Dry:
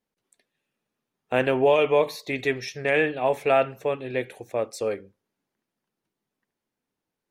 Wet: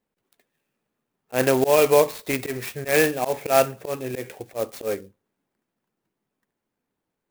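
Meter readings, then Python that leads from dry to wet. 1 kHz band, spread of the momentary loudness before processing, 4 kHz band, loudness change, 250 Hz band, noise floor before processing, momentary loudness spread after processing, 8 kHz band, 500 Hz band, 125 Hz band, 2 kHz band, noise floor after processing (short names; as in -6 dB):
+1.0 dB, 10 LU, +3.0 dB, +2.0 dB, +3.0 dB, under -85 dBFS, 14 LU, +13.5 dB, +1.5 dB, +2.5 dB, 0.0 dB, -83 dBFS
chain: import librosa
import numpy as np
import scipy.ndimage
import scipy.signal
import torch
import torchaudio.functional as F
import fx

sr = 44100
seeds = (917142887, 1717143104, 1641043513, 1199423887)

y = fx.high_shelf(x, sr, hz=6700.0, db=-9.5)
y = fx.auto_swell(y, sr, attack_ms=106.0)
y = fx.clock_jitter(y, sr, seeds[0], jitter_ms=0.05)
y = y * 10.0 ** (4.0 / 20.0)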